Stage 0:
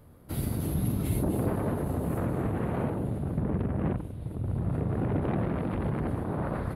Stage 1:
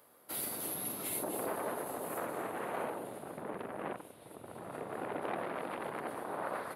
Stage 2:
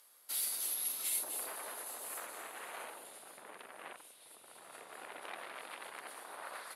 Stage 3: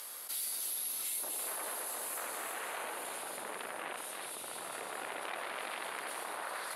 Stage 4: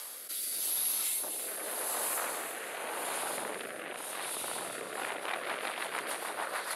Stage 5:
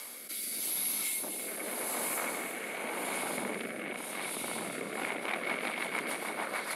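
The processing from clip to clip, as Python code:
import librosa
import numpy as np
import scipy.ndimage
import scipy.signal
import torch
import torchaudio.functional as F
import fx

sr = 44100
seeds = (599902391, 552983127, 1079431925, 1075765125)

y1 = scipy.signal.sosfilt(scipy.signal.butter(2, 590.0, 'highpass', fs=sr, output='sos'), x)
y1 = fx.high_shelf(y1, sr, hz=5200.0, db=6.0)
y2 = fx.bandpass_q(y1, sr, hz=6300.0, q=1.0)
y2 = F.gain(torch.from_numpy(y2), 8.5).numpy()
y3 = y2 + 10.0 ** (-8.5 / 20.0) * np.pad(y2, (int(335 * sr / 1000.0), 0))[:len(y2)]
y3 = fx.env_flatten(y3, sr, amount_pct=70)
y3 = F.gain(torch.from_numpy(y3), -3.5).numpy()
y4 = fx.rotary_switch(y3, sr, hz=0.85, then_hz=6.7, switch_at_s=4.67)
y4 = F.gain(torch.from_numpy(y4), 7.0).numpy()
y5 = fx.small_body(y4, sr, hz=(210.0, 2200.0), ring_ms=25, db=14)
y5 = F.gain(torch.from_numpy(y5), -1.5).numpy()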